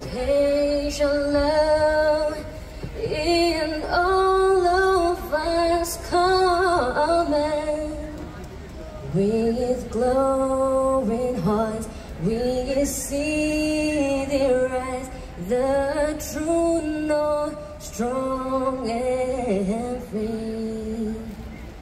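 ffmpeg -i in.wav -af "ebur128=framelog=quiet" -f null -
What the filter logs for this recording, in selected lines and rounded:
Integrated loudness:
  I:         -22.5 LUFS
  Threshold: -32.9 LUFS
Loudness range:
  LRA:         4.5 LU
  Threshold: -42.9 LUFS
  LRA low:   -25.0 LUFS
  LRA high:  -20.5 LUFS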